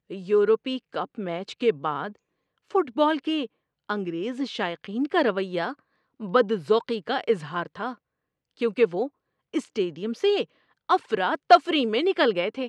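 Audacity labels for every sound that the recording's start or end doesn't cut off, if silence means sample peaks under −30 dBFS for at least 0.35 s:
2.750000	3.450000	sound
3.890000	5.720000	sound
6.220000	7.930000	sound
8.610000	9.070000	sound
9.540000	10.440000	sound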